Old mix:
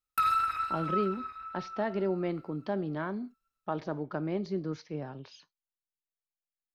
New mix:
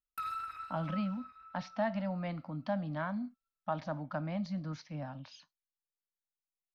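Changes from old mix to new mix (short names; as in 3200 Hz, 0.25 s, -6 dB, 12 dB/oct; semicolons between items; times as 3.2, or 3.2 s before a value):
speech: add Chebyshev band-stop 260–600 Hz, order 2; background -12.0 dB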